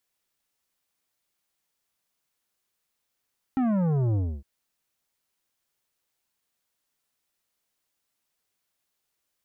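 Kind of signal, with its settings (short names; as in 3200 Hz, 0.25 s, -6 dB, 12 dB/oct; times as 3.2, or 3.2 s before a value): sub drop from 270 Hz, over 0.86 s, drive 11 dB, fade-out 0.28 s, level -22.5 dB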